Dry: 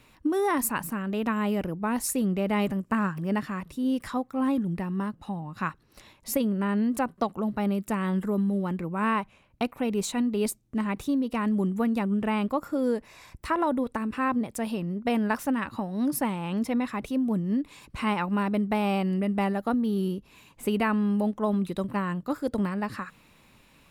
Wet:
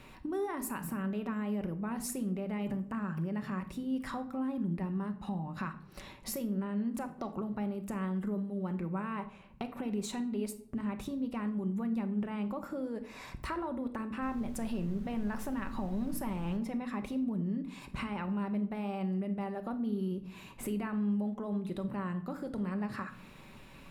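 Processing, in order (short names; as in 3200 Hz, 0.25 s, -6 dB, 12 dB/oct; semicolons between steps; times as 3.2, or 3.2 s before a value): high shelf 3500 Hz -7 dB; limiter -24 dBFS, peak gain reduction 11 dB; compressor 3:1, threshold -43 dBFS, peak gain reduction 12 dB; 14.21–16.56 added noise brown -51 dBFS; shoebox room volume 1000 m³, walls furnished, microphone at 1.1 m; gain +4.5 dB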